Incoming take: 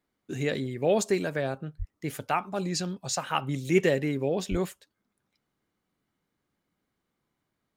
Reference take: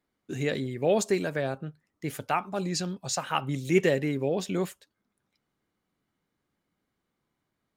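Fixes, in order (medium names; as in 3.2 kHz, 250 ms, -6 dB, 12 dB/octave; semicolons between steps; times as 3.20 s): de-plosive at 1.78/4.50 s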